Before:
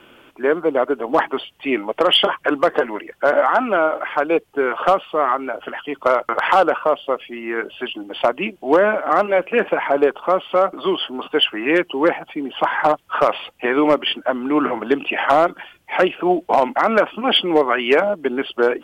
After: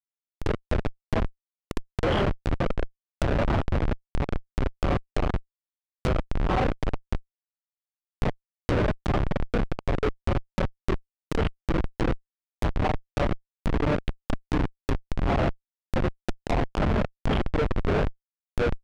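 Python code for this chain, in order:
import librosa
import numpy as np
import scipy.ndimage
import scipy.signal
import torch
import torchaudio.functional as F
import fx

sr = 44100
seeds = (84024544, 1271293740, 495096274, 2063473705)

y = fx.phase_scramble(x, sr, seeds[0], window_ms=200)
y = fx.schmitt(y, sr, flips_db=-11.5)
y = fx.env_lowpass_down(y, sr, base_hz=2500.0, full_db=-18.0)
y = y * librosa.db_to_amplitude(-3.0)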